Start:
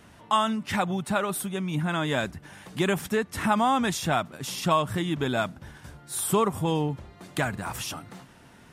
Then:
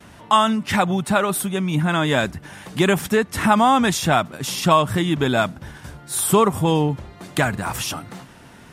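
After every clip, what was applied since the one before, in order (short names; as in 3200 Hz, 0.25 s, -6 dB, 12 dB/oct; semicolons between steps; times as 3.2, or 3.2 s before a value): gate with hold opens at -46 dBFS; gain +7.5 dB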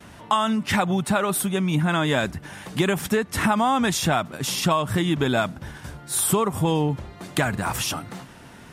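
compressor, threshold -17 dBFS, peak gain reduction 7.5 dB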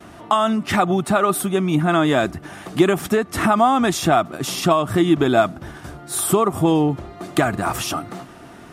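small resonant body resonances 340/680/1200 Hz, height 10 dB, ringing for 25 ms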